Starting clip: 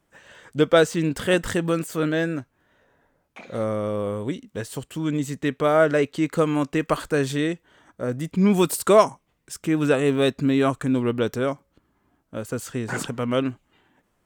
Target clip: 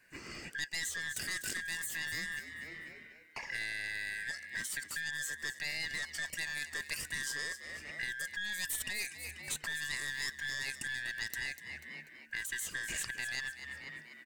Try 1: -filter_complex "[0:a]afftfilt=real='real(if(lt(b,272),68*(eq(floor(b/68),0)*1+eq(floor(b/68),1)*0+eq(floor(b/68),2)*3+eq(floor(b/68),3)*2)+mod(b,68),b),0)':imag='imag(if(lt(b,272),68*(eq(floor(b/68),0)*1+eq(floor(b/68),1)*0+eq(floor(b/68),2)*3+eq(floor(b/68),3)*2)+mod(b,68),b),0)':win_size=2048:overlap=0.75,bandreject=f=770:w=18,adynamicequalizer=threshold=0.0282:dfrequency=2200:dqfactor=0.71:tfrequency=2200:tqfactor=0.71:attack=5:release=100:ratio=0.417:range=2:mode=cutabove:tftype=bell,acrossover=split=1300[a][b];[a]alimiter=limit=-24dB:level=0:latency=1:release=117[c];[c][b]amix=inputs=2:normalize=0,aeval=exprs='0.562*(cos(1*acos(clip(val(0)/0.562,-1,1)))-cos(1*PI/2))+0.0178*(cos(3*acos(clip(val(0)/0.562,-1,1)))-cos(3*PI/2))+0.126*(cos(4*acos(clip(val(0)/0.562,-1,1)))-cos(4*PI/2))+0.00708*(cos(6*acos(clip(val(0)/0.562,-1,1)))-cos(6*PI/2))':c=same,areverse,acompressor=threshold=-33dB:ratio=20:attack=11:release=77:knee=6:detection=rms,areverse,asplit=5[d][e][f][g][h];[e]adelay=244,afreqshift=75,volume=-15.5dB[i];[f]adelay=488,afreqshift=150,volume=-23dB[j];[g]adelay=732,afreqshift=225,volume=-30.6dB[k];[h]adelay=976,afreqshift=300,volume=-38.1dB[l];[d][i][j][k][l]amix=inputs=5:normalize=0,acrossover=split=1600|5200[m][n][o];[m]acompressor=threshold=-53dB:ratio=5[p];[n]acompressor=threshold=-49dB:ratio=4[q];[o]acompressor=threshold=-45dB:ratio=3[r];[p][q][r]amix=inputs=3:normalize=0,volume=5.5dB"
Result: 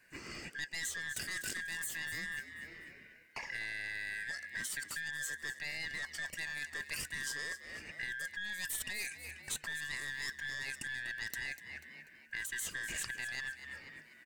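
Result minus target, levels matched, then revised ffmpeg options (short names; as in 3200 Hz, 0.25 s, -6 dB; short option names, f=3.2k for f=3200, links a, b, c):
compressor: peak gain reduction +8 dB
-filter_complex "[0:a]afftfilt=real='real(if(lt(b,272),68*(eq(floor(b/68),0)*1+eq(floor(b/68),1)*0+eq(floor(b/68),2)*3+eq(floor(b/68),3)*2)+mod(b,68),b),0)':imag='imag(if(lt(b,272),68*(eq(floor(b/68),0)*1+eq(floor(b/68),1)*0+eq(floor(b/68),2)*3+eq(floor(b/68),3)*2)+mod(b,68),b),0)':win_size=2048:overlap=0.75,bandreject=f=770:w=18,adynamicequalizer=threshold=0.0282:dfrequency=2200:dqfactor=0.71:tfrequency=2200:tqfactor=0.71:attack=5:release=100:ratio=0.417:range=2:mode=cutabove:tftype=bell,acrossover=split=1300[a][b];[a]alimiter=limit=-24dB:level=0:latency=1:release=117[c];[c][b]amix=inputs=2:normalize=0,aeval=exprs='0.562*(cos(1*acos(clip(val(0)/0.562,-1,1)))-cos(1*PI/2))+0.0178*(cos(3*acos(clip(val(0)/0.562,-1,1)))-cos(3*PI/2))+0.126*(cos(4*acos(clip(val(0)/0.562,-1,1)))-cos(4*PI/2))+0.00708*(cos(6*acos(clip(val(0)/0.562,-1,1)))-cos(6*PI/2))':c=same,areverse,acompressor=threshold=-24.5dB:ratio=20:attack=11:release=77:knee=6:detection=rms,areverse,asplit=5[d][e][f][g][h];[e]adelay=244,afreqshift=75,volume=-15.5dB[i];[f]adelay=488,afreqshift=150,volume=-23dB[j];[g]adelay=732,afreqshift=225,volume=-30.6dB[k];[h]adelay=976,afreqshift=300,volume=-38.1dB[l];[d][i][j][k][l]amix=inputs=5:normalize=0,acrossover=split=1600|5200[m][n][o];[m]acompressor=threshold=-53dB:ratio=5[p];[n]acompressor=threshold=-49dB:ratio=4[q];[o]acompressor=threshold=-45dB:ratio=3[r];[p][q][r]amix=inputs=3:normalize=0,volume=5.5dB"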